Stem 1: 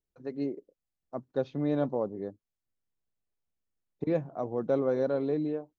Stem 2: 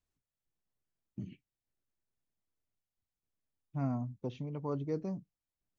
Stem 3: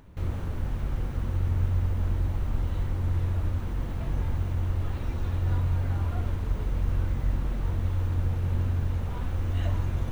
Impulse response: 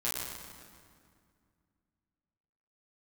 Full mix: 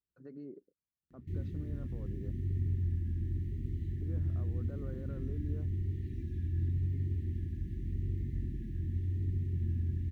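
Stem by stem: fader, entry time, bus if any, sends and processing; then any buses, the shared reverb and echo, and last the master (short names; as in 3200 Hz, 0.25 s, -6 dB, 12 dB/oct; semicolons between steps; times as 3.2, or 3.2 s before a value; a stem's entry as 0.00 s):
-1.0 dB, 0.00 s, bus A, no send, bell 400 Hz -6 dB 2 oct
off
-5.0 dB, 1.10 s, no bus, no send, FFT band-reject 400–1700 Hz
bus A: 0.0 dB, limiter -38 dBFS, peak gain reduction 15.5 dB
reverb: off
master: EQ curve 390 Hz 0 dB, 850 Hz -15 dB, 1400 Hz -1 dB, 2200 Hz -14 dB; vibrato 0.89 Hz 62 cents; HPF 64 Hz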